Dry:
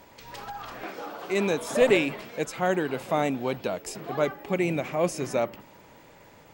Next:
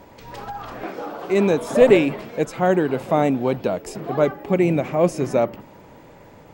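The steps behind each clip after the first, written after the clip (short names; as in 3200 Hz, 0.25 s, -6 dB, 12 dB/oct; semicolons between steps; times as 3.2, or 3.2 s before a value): tilt shelf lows +5 dB, about 1200 Hz; gain +4 dB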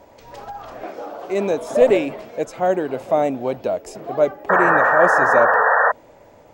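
fifteen-band EQ 160 Hz -6 dB, 630 Hz +8 dB, 6300 Hz +4 dB; painted sound noise, 4.49–5.92, 430–1900 Hz -11 dBFS; gain -4.5 dB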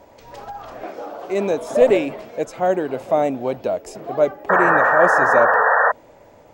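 nothing audible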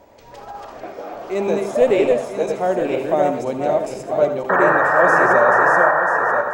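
regenerating reverse delay 0.493 s, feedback 46%, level -2.5 dB; reverb RT60 0.35 s, pre-delay 70 ms, DRR 9 dB; gain -1.5 dB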